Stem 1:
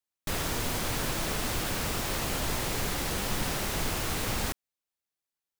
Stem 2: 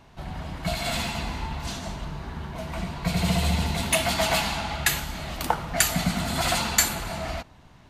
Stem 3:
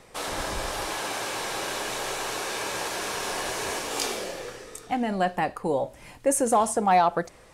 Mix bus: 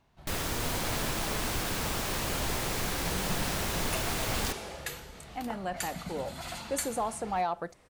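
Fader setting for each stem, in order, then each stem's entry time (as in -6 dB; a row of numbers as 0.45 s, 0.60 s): -1.5 dB, -15.5 dB, -10.5 dB; 0.00 s, 0.00 s, 0.45 s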